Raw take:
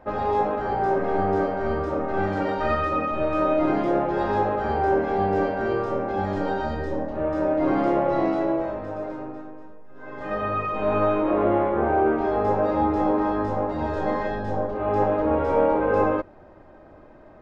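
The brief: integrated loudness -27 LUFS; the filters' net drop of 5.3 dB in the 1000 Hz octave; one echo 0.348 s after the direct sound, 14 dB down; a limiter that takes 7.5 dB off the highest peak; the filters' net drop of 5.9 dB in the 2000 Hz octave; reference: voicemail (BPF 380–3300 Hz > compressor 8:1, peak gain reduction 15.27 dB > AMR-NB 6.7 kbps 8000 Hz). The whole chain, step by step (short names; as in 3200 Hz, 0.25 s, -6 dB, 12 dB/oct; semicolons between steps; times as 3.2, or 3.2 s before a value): bell 1000 Hz -6 dB; bell 2000 Hz -5 dB; limiter -18 dBFS; BPF 380–3300 Hz; echo 0.348 s -14 dB; compressor 8:1, threshold -39 dBFS; gain +16.5 dB; AMR-NB 6.7 kbps 8000 Hz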